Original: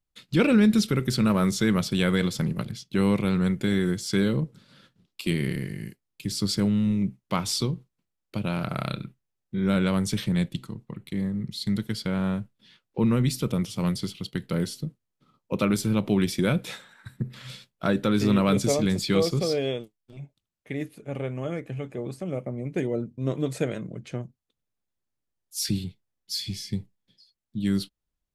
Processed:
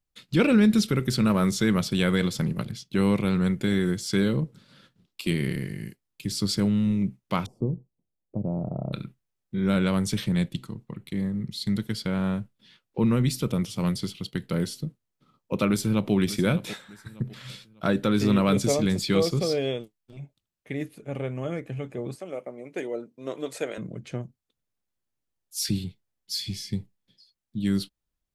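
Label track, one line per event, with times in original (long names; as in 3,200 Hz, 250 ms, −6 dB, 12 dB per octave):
7.460000	8.930000	inverse Chebyshev low-pass filter stop band from 1,500 Hz
15.680000	16.130000	delay throw 600 ms, feedback 35%, level −14.5 dB
22.150000	23.780000	high-pass filter 420 Hz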